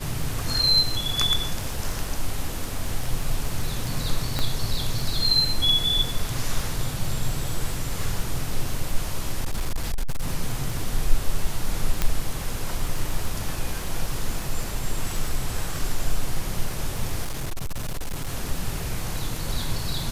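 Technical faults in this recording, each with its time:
crackle 34 per s -29 dBFS
4.39 s: pop -10 dBFS
9.41–10.28 s: clipped -20 dBFS
12.02 s: pop -7 dBFS
17.22–18.28 s: clipped -24 dBFS

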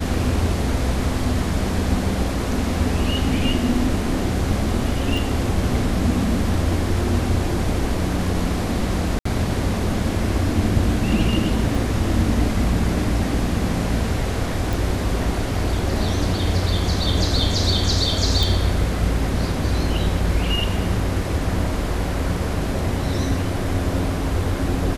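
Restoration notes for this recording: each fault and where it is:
5.17 s: dropout 3.3 ms
9.19–9.25 s: dropout 64 ms
11.75 s: dropout 2.2 ms
14.73 s: pop
18.43 s: pop

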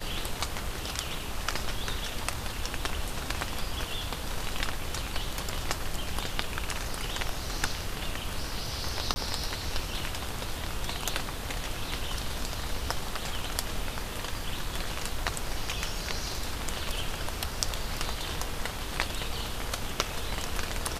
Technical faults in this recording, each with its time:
9.14–9.16 s: dropout 20 ms

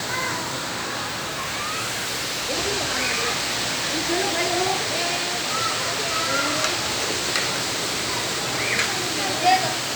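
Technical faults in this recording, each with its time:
1.02–2.51 s: clipped -23 dBFS

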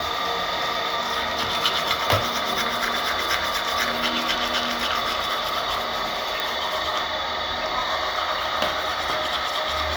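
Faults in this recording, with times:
6.40 s: pop

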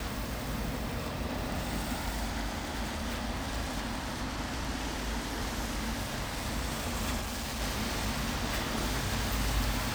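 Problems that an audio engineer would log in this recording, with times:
7.20–7.62 s: clipped -32.5 dBFS

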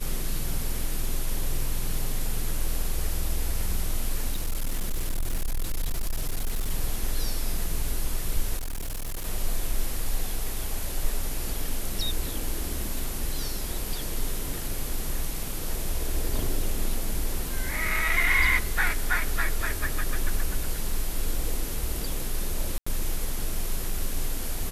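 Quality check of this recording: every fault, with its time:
4.32–6.70 s: clipped -22.5 dBFS
8.57–9.26 s: clipped -28 dBFS
22.78–22.86 s: dropout 85 ms

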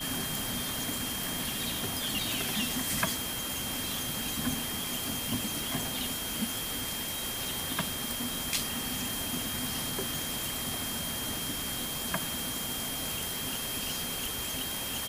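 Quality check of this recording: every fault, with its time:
whine 3.2 kHz -39 dBFS

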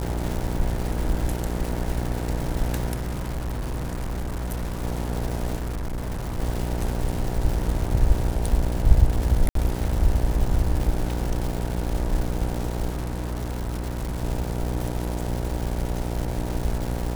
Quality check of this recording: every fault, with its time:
buzz 60 Hz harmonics 16 -28 dBFS
crackle 450 per s -28 dBFS
2.93–4.84 s: clipped -25 dBFS
5.57–6.40 s: clipped -25.5 dBFS
9.49–9.55 s: dropout 63 ms
12.89–14.23 s: clipped -24.5 dBFS

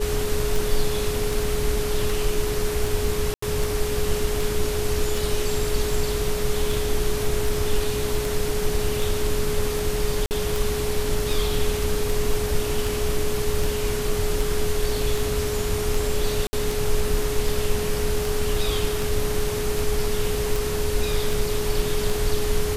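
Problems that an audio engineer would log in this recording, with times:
tick 78 rpm
whine 420 Hz -26 dBFS
3.34–3.42 s: dropout 84 ms
10.26–10.31 s: dropout 49 ms
16.47–16.53 s: dropout 60 ms

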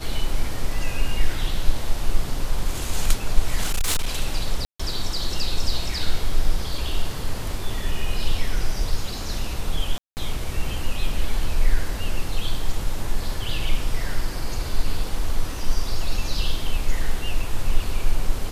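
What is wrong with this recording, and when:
3.63–4.08 s: clipped -17 dBFS
4.65–4.79 s: dropout 145 ms
9.98–10.17 s: dropout 189 ms

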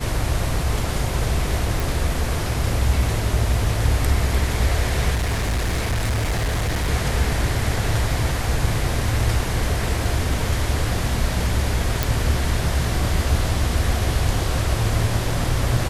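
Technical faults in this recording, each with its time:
1.80 s: pop
5.14–6.89 s: clipped -18 dBFS
12.03 s: pop

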